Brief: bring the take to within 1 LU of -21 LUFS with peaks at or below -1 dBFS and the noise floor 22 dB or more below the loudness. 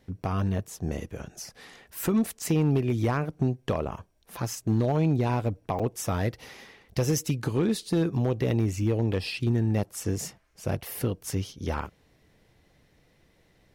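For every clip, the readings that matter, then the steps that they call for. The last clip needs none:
clipped samples 0.5%; clipping level -17.5 dBFS; dropouts 1; longest dropout 6.1 ms; loudness -28.5 LUFS; peak level -17.5 dBFS; loudness target -21.0 LUFS
-> clip repair -17.5 dBFS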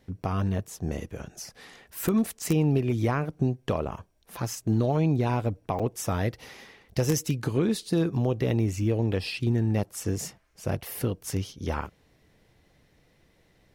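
clipped samples 0.0%; dropouts 1; longest dropout 6.1 ms
-> interpolate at 5.79 s, 6.1 ms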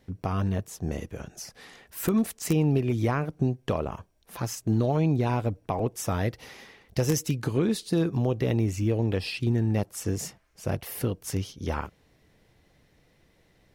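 dropouts 0; loudness -28.0 LUFS; peak level -8.5 dBFS; loudness target -21.0 LUFS
-> trim +7 dB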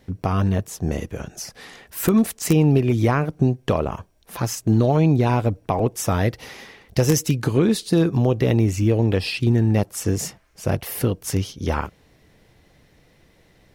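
loudness -21.0 LUFS; peak level -1.5 dBFS; noise floor -57 dBFS

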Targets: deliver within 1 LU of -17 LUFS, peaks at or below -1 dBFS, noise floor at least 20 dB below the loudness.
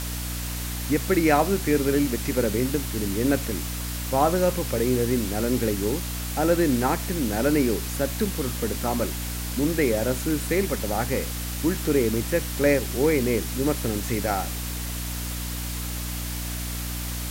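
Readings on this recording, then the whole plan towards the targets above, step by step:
hum 60 Hz; highest harmonic 300 Hz; hum level -29 dBFS; noise floor -31 dBFS; noise floor target -45 dBFS; loudness -25.0 LUFS; peak level -6.5 dBFS; loudness target -17.0 LUFS
-> de-hum 60 Hz, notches 5; noise reduction 14 dB, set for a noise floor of -31 dBFS; trim +8 dB; peak limiter -1 dBFS

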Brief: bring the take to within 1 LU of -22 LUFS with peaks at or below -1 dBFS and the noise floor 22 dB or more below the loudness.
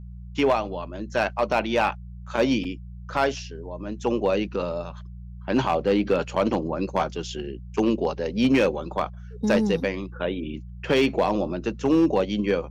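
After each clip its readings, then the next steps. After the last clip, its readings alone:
clipped samples 0.5%; clipping level -13.5 dBFS; hum 60 Hz; highest harmonic 180 Hz; hum level -37 dBFS; loudness -25.0 LUFS; peak level -13.5 dBFS; loudness target -22.0 LUFS
-> clip repair -13.5 dBFS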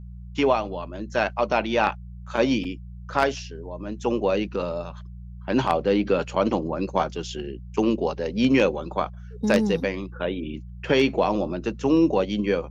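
clipped samples 0.0%; hum 60 Hz; highest harmonic 180 Hz; hum level -37 dBFS
-> de-hum 60 Hz, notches 3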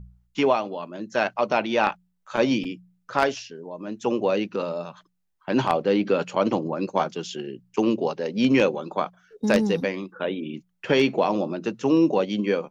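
hum not found; loudness -24.5 LUFS; peak level -4.5 dBFS; loudness target -22.0 LUFS
-> trim +2.5 dB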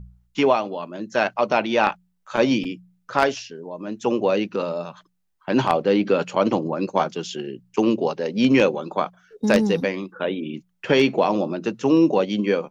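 loudness -22.0 LUFS; peak level -2.0 dBFS; noise floor -68 dBFS

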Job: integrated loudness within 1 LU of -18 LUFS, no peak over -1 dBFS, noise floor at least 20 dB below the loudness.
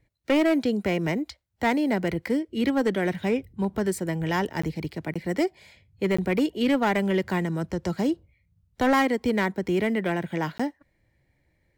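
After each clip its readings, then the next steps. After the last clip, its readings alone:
clipped samples 1.4%; clipping level -16.5 dBFS; dropouts 4; longest dropout 15 ms; loudness -26.0 LUFS; peak level -16.5 dBFS; loudness target -18.0 LUFS
-> clip repair -16.5 dBFS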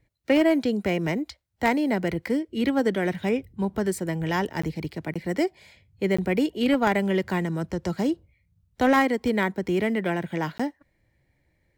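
clipped samples 0.0%; dropouts 4; longest dropout 15 ms
-> interpolate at 4.62/5.14/6.17/10.58 s, 15 ms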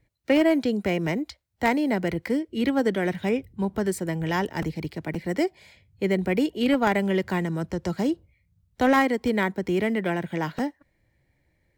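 dropouts 0; loudness -25.5 LUFS; peak level -7.5 dBFS; loudness target -18.0 LUFS
-> trim +7.5 dB; peak limiter -1 dBFS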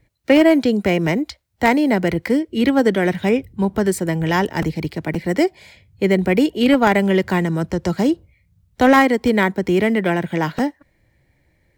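loudness -18.0 LUFS; peak level -1.0 dBFS; noise floor -63 dBFS

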